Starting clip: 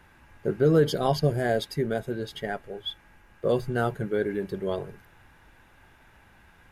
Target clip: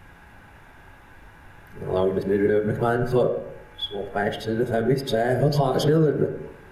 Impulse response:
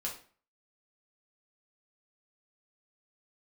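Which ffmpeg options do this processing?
-filter_complex "[0:a]areverse,asplit=2[s0][s1];[1:a]atrim=start_sample=2205,asetrate=25137,aresample=44100,lowpass=2200[s2];[s1][s2]afir=irnorm=-1:irlink=0,volume=0.473[s3];[s0][s3]amix=inputs=2:normalize=0,alimiter=limit=0.168:level=0:latency=1:release=226,volume=1.68"

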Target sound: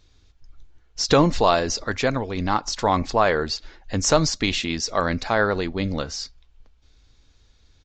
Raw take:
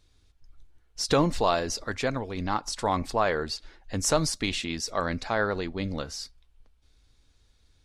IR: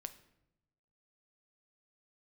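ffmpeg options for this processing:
-af "aresample=16000,aresample=44100,volume=2"

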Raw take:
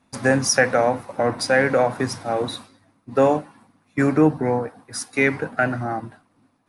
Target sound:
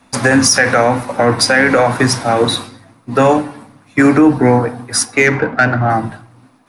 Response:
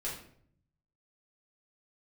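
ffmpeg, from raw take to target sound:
-filter_complex "[0:a]acrossover=split=460|840[s0][s1][s2];[s0]flanger=delay=16:depth=2.6:speed=0.92[s3];[s1]acompressor=threshold=0.02:ratio=6[s4];[s3][s4][s2]amix=inputs=3:normalize=0,asoftclip=type=tanh:threshold=0.447,asettb=1/sr,asplit=3[s5][s6][s7];[s5]atrim=end=5.054[s8];[s6]atrim=start=5.05:end=5.9,asetpts=PTS-STARTPTS,afade=t=in:d=0.004:c=qsin,afade=t=out:st=0.846:d=0.004:c=qsin,adynamicsmooth=sensitivity=1:basefreq=2300[s9];[s7]atrim=start=5.896[s10];[s8][s9]acrossfade=d=0.004:c1=hsin:c2=qsin[s11];[s11][s10]acrossfade=d=0.004:c1=qsin:c2=hsin,asplit=2[s12][s13];[1:a]atrim=start_sample=2205[s14];[s13][s14]afir=irnorm=-1:irlink=0,volume=0.178[s15];[s12][s15]amix=inputs=2:normalize=0,alimiter=level_in=5.62:limit=0.891:release=50:level=0:latency=1,volume=0.891"

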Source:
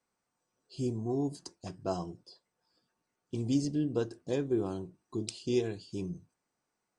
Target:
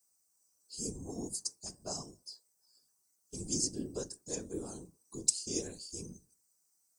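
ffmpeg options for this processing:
-af "aexciter=amount=15.5:drive=5.8:freq=5000,bandreject=f=129.3:t=h:w=4,bandreject=f=258.6:t=h:w=4,bandreject=f=387.9:t=h:w=4,bandreject=f=517.2:t=h:w=4,bandreject=f=646.5:t=h:w=4,bandreject=f=775.8:t=h:w=4,bandreject=f=905.1:t=h:w=4,bandreject=f=1034.4:t=h:w=4,bandreject=f=1163.7:t=h:w=4,afftfilt=real='hypot(re,im)*cos(2*PI*random(0))':imag='hypot(re,im)*sin(2*PI*random(1))':win_size=512:overlap=0.75,volume=0.668"

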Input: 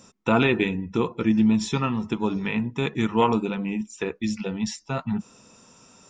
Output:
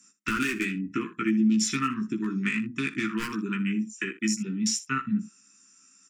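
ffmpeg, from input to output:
-filter_complex "[0:a]aemphasis=mode=production:type=riaa,afwtdn=0.02,acrossover=split=1300[s0][s1];[s1]asoftclip=type=tanh:threshold=0.106[s2];[s0][s2]amix=inputs=2:normalize=0,highpass=190,lowpass=7300,aeval=exprs='0.158*(abs(mod(val(0)/0.158+3,4)-2)-1)':c=same,acompressor=threshold=0.0355:ratio=6,asuperstop=centerf=650:order=8:qfactor=0.67,equalizer=f=3700:w=1.5:g=-15,aecho=1:1:15|60|78:0.668|0.141|0.15,volume=2.66"

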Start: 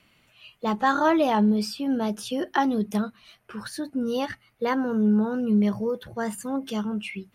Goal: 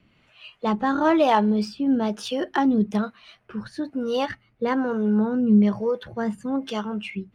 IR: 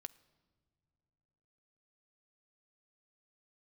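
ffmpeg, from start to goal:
-filter_complex "[0:a]acrossover=split=410[s0][s1];[s0]aeval=exprs='val(0)*(1-0.7/2+0.7/2*cos(2*PI*1.1*n/s))':c=same[s2];[s1]aeval=exprs='val(0)*(1-0.7/2-0.7/2*cos(2*PI*1.1*n/s))':c=same[s3];[s2][s3]amix=inputs=2:normalize=0,adynamicsmooth=sensitivity=4:basefreq=5100,volume=2"

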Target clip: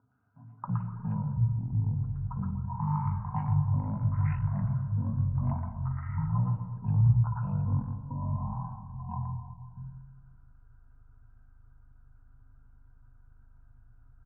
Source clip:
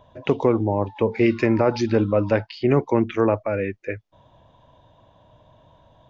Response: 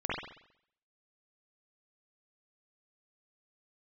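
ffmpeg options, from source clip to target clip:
-filter_complex "[0:a]acontrast=67,asplit=3[s0][s1][s2];[s0]bandpass=f=270:t=q:w=8,volume=1[s3];[s1]bandpass=f=2290:t=q:w=8,volume=0.501[s4];[s2]bandpass=f=3010:t=q:w=8,volume=0.355[s5];[s3][s4][s5]amix=inputs=3:normalize=0,aeval=exprs='val(0)+0.00224*(sin(2*PI*60*n/s)+sin(2*PI*2*60*n/s)/2+sin(2*PI*3*60*n/s)/3+sin(2*PI*4*60*n/s)/4+sin(2*PI*5*60*n/s)/5)':c=same,acrossover=split=320|2900[s6][s7][s8];[s8]adelay=50[s9];[s6]adelay=290[s10];[s10][s7][s9]amix=inputs=3:normalize=0,asplit=2[s11][s12];[1:a]atrim=start_sample=2205[s13];[s12][s13]afir=irnorm=-1:irlink=0,volume=0.266[s14];[s11][s14]amix=inputs=2:normalize=0,asetrate=18846,aresample=44100,volume=0.794"

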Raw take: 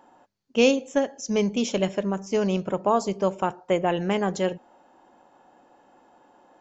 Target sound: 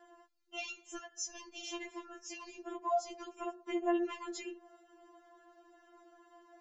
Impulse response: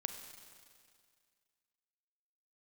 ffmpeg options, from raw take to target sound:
-af "acompressor=threshold=0.0355:ratio=5,afftfilt=real='re*4*eq(mod(b,16),0)':imag='im*4*eq(mod(b,16),0)':win_size=2048:overlap=0.75,volume=0.891"

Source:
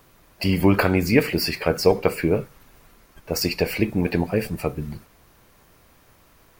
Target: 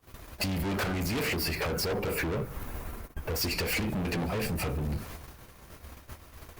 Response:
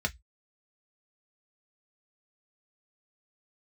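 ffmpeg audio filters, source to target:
-filter_complex "[0:a]flanger=delay=2.6:depth=5.5:regen=-79:speed=0.31:shape=sinusoidal,aeval=exprs='0.398*sin(PI/2*2.24*val(0)/0.398)':c=same,acompressor=threshold=0.0891:ratio=6,asettb=1/sr,asplit=3[s0][s1][s2];[s0]atrim=end=1.364[s3];[s1]atrim=start=1.36:end=3.41,asetpts=PTS-STARTPTS,afade=t=in:d=0.004:c=qsin,afade=t=out:st=2.046:d=0.004:c=qsin,equalizer=f=4700:w=0.48:g=-8[s4];[s2]atrim=start=3.406[s5];[s3][s4]acrossfade=d=0.004:c1=hsin:c2=qsin[s6];[s6][s5]acrossfade=d=0.004:c1=qsin:c2=hsin,agate=range=0.0282:threshold=0.00501:ratio=16:detection=peak,asoftclip=type=hard:threshold=0.0299,equalizer=f=70:w=2:g=10,alimiter=level_in=2.82:limit=0.0631:level=0:latency=1:release=175,volume=0.355,volume=2.24" -ar 48000 -c:a libopus -b:a 64k

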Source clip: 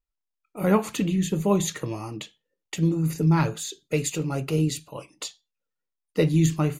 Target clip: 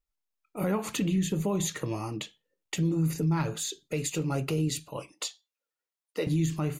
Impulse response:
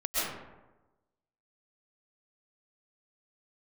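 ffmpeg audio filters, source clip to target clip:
-filter_complex "[0:a]asettb=1/sr,asplit=3[s0][s1][s2];[s0]atrim=end=5.124[s3];[s1]atrim=start=5.12:end=6.27,asetpts=PTS-STARTPTS,afade=t=in:d=0.004:c=qsin,afade=t=out:st=1.146:d=0.004:c=qsin,highpass=380[s4];[s2]atrim=start=6.266[s5];[s3][s4]acrossfade=d=0.004:c1=hsin:c2=qsin[s6];[s6][s5]acrossfade=d=0.004:c1=qsin:c2=hsin,alimiter=limit=0.106:level=0:latency=1:release=131"

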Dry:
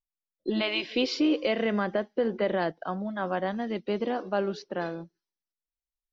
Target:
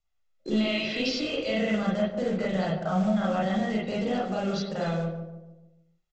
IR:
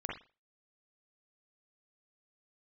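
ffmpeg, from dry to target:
-filter_complex "[0:a]acontrast=87,aecho=1:1:1.5:0.52,acrossover=split=210|3000[s0][s1][s2];[s1]acompressor=threshold=0.0282:ratio=5[s3];[s0][s3][s2]amix=inputs=3:normalize=0,bandreject=f=374.9:t=h:w=4,bandreject=f=749.8:t=h:w=4,bandreject=f=1124.7:t=h:w=4,bandreject=f=1499.6:t=h:w=4,bandreject=f=1874.5:t=h:w=4,bandreject=f=2249.4:t=h:w=4,bandreject=f=2624.3:t=h:w=4,bandreject=f=2999.2:t=h:w=4,bandreject=f=3374.1:t=h:w=4,bandreject=f=3749:t=h:w=4,bandreject=f=4123.9:t=h:w=4,bandreject=f=4498.8:t=h:w=4,bandreject=f=4873.7:t=h:w=4,bandreject=f=5248.6:t=h:w=4,bandreject=f=5623.5:t=h:w=4,bandreject=f=5998.4:t=h:w=4,bandreject=f=6373.3:t=h:w=4,bandreject=f=6748.2:t=h:w=4,bandreject=f=7123.1:t=h:w=4,bandreject=f=7498:t=h:w=4,bandreject=f=7872.9:t=h:w=4,bandreject=f=8247.8:t=h:w=4,bandreject=f=8622.7:t=h:w=4,bandreject=f=8997.6:t=h:w=4,bandreject=f=9372.5:t=h:w=4,bandreject=f=9747.4:t=h:w=4,bandreject=f=10122.3:t=h:w=4,bandreject=f=10497.2:t=h:w=4,bandreject=f=10872.1:t=h:w=4,bandreject=f=11247:t=h:w=4,bandreject=f=11621.9:t=h:w=4,bandreject=f=11996.8:t=h:w=4,bandreject=f=12371.7:t=h:w=4,bandreject=f=12746.6:t=h:w=4,bandreject=f=13121.5:t=h:w=4,bandreject=f=13496.4:t=h:w=4,bandreject=f=13871.3:t=h:w=4,alimiter=limit=0.0668:level=0:latency=1:release=20,aresample=16000,acrusher=bits=5:mode=log:mix=0:aa=0.000001,aresample=44100,asplit=2[s4][s5];[s5]adelay=146,lowpass=f=940:p=1,volume=0.501,asplit=2[s6][s7];[s7]adelay=146,lowpass=f=940:p=1,volume=0.5,asplit=2[s8][s9];[s9]adelay=146,lowpass=f=940:p=1,volume=0.5,asplit=2[s10][s11];[s11]adelay=146,lowpass=f=940:p=1,volume=0.5,asplit=2[s12][s13];[s13]adelay=146,lowpass=f=940:p=1,volume=0.5,asplit=2[s14][s15];[s15]adelay=146,lowpass=f=940:p=1,volume=0.5[s16];[s4][s6][s8][s10][s12][s14][s16]amix=inputs=7:normalize=0[s17];[1:a]atrim=start_sample=2205,asetrate=48510,aresample=44100[s18];[s17][s18]afir=irnorm=-1:irlink=0,volume=1.41"

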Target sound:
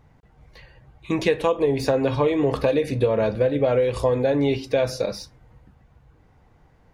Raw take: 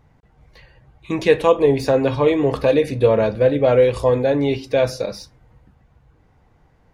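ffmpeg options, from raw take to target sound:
-af "acompressor=threshold=0.158:ratio=10"

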